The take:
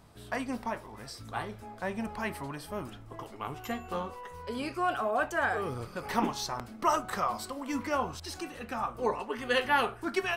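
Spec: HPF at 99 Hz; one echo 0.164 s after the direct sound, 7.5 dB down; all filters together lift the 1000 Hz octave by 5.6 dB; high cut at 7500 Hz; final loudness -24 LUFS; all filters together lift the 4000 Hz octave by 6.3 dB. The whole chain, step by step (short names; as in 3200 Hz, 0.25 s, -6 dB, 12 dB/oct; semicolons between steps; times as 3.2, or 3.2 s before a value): HPF 99 Hz; LPF 7500 Hz; bell 1000 Hz +6.5 dB; bell 4000 Hz +8.5 dB; echo 0.164 s -7.5 dB; gain +4.5 dB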